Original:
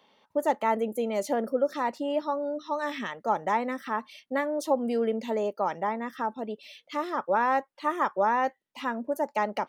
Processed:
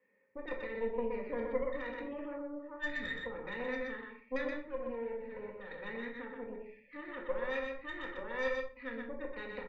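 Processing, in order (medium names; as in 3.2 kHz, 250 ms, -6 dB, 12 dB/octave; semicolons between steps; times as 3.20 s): 4.55–5.71 s: partial rectifier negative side -12 dB; peak limiter -20 dBFS, peak gain reduction 7.5 dB; cascade formant filter e; static phaser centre 1.6 kHz, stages 4; Chebyshev shaper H 4 -13 dB, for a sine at -32 dBFS; delay 124 ms -4 dB; simulated room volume 420 m³, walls furnished, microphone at 1.9 m; 1.98–2.42 s: level flattener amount 100%; trim +3.5 dB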